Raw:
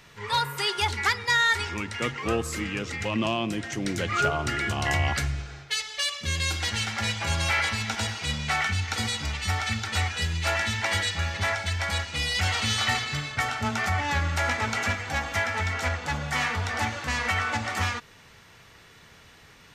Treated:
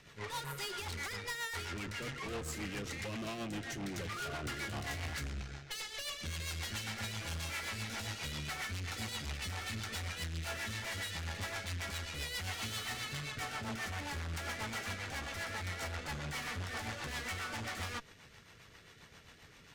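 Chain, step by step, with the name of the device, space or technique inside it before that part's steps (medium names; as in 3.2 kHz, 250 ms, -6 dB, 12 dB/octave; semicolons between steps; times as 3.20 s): overdriven rotary cabinet (valve stage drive 38 dB, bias 0.8; rotary cabinet horn 7.5 Hz); trim +1.5 dB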